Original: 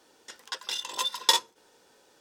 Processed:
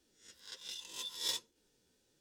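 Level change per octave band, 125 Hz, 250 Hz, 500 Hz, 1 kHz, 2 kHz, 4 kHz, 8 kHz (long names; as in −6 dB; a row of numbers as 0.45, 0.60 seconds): can't be measured, −11.0 dB, −16.0 dB, −24.5 dB, −16.0 dB, −12.5 dB, −11.0 dB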